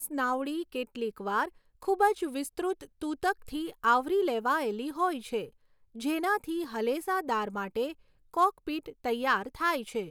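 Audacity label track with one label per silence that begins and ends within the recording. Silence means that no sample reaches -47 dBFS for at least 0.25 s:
1.490000	1.820000	silence
5.490000	5.950000	silence
7.930000	8.340000	silence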